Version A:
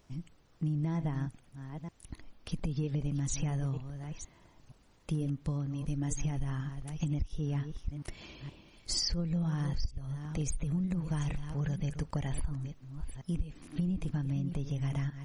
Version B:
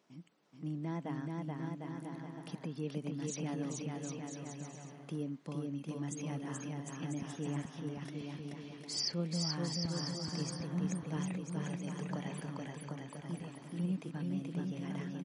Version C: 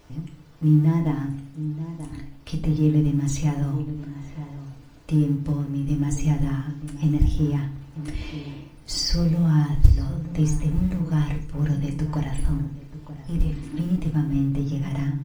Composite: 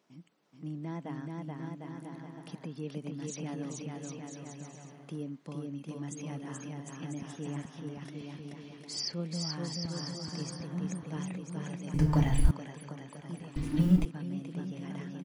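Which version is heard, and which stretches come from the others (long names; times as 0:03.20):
B
0:11.94–0:12.51: punch in from C
0:13.56–0:14.05: punch in from C
not used: A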